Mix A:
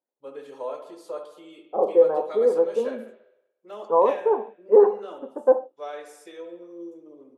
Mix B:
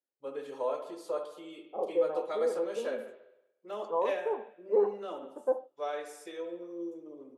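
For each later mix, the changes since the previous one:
second voice -11.5 dB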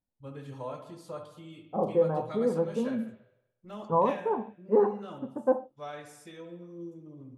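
first voice -11.0 dB; master: remove ladder high-pass 350 Hz, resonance 45%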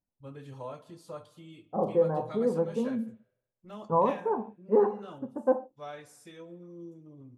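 first voice: send -11.5 dB

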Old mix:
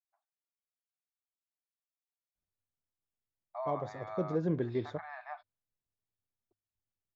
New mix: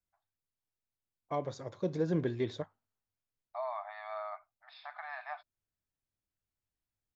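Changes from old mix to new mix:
second voice: entry -2.35 s; master: add treble shelf 2.1 kHz +10 dB

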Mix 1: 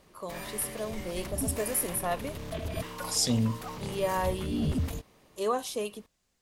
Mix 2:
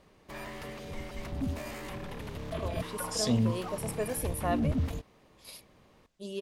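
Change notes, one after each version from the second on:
first voice: entry +2.40 s; master: add treble shelf 5.8 kHz -10.5 dB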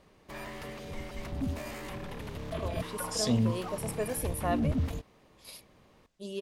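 no change

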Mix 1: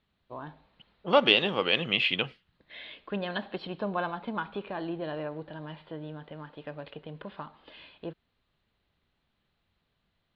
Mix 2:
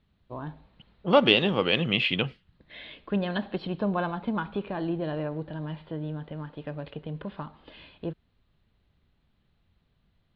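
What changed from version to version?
master: add bass shelf 280 Hz +11.5 dB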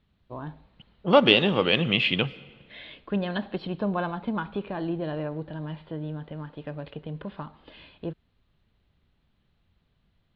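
reverb: on, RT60 1.6 s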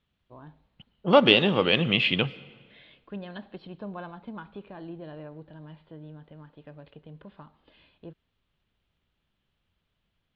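first voice -10.5 dB

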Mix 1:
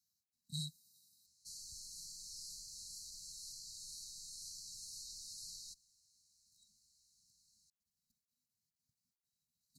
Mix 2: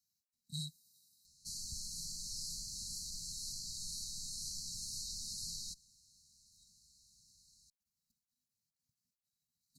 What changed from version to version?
background: remove amplifier tone stack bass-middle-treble 5-5-5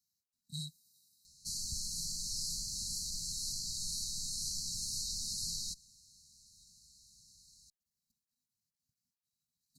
background +5.0 dB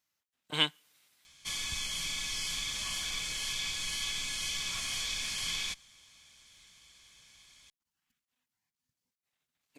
master: remove brick-wall FIR band-stop 250–3800 Hz

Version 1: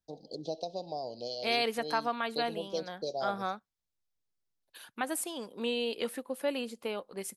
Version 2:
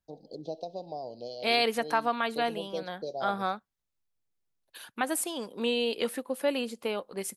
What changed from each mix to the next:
first voice: add treble shelf 2.7 kHz -9.5 dB; second voice +4.0 dB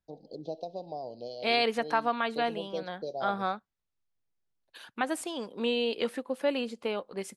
master: add distance through air 68 m

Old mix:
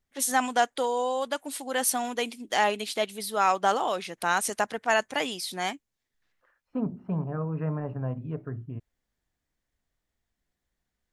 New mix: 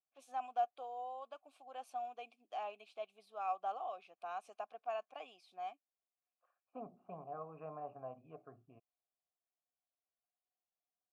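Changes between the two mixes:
first voice -9.5 dB; master: add vowel filter a

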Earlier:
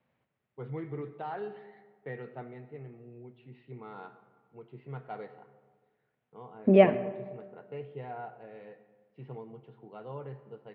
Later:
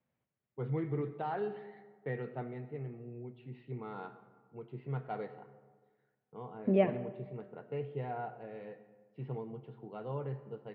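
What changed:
second voice -10.5 dB; master: add bass shelf 370 Hz +5 dB

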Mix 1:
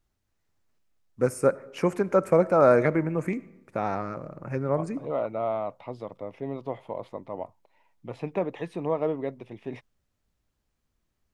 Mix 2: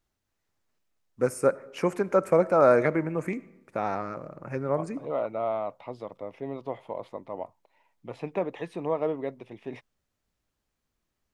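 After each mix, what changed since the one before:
master: add bass shelf 190 Hz -6.5 dB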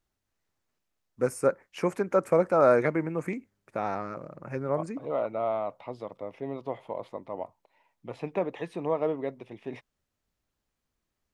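reverb: off

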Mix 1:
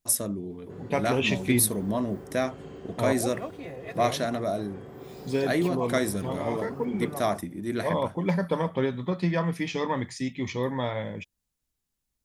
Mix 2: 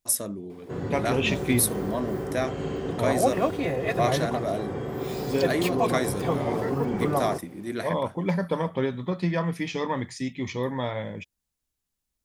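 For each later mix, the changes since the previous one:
first voice: add bass shelf 200 Hz -6.5 dB; background +12.0 dB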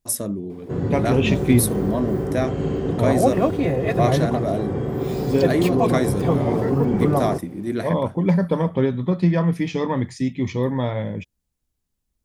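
master: add bass shelf 500 Hz +10 dB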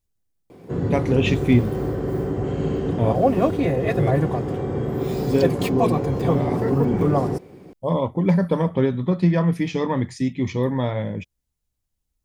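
first voice: muted

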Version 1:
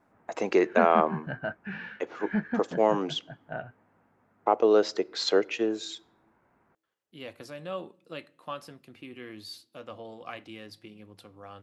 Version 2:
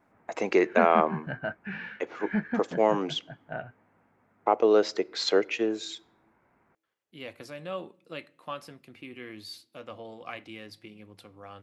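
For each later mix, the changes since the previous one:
master: add peaking EQ 2.2 kHz +4.5 dB 0.39 oct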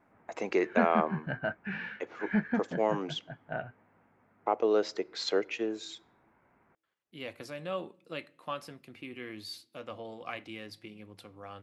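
first voice -5.5 dB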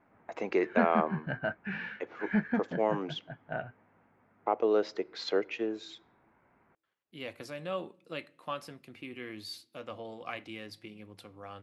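first voice: add distance through air 120 m

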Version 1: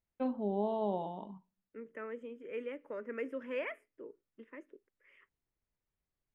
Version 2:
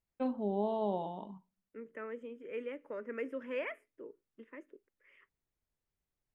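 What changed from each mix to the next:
first voice: remove distance through air 81 m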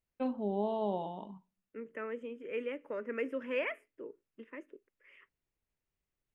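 second voice +3.0 dB; master: add peaking EQ 2.7 kHz +4.5 dB 0.37 oct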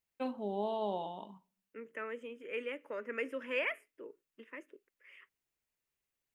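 first voice: send +6.5 dB; master: add tilt EQ +2.5 dB/octave

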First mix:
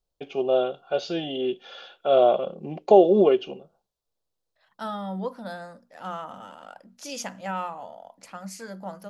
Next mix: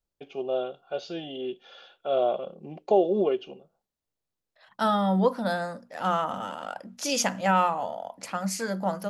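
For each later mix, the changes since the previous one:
first voice -6.5 dB; second voice +8.5 dB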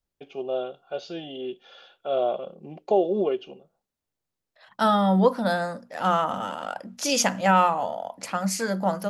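second voice +3.5 dB

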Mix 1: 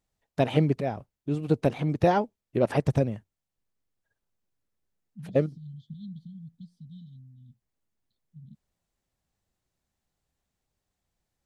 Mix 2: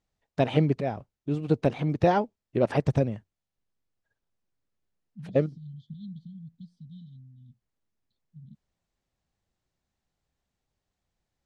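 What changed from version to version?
master: add low-pass 6.8 kHz 12 dB/octave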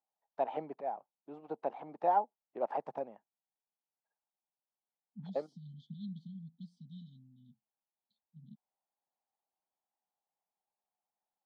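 first voice: add band-pass filter 830 Hz, Q 4; master: add high-pass 180 Hz 24 dB/octave

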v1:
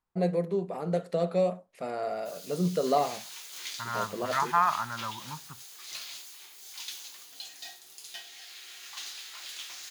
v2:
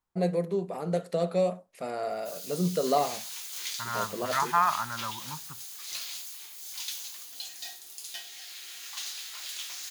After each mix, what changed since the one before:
master: add treble shelf 5.5 kHz +7.5 dB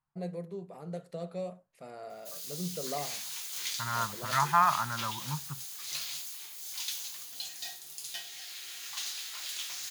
first voice -12.0 dB; master: add peaking EQ 140 Hz +11.5 dB 0.37 oct

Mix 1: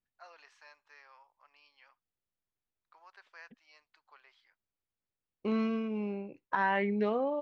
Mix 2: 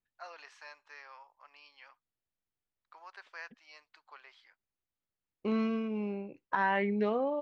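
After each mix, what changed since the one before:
first voice +6.5 dB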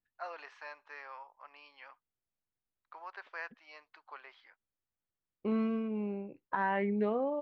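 first voice +7.5 dB; master: add tape spacing loss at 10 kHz 25 dB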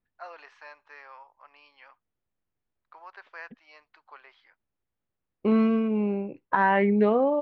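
second voice +10.0 dB

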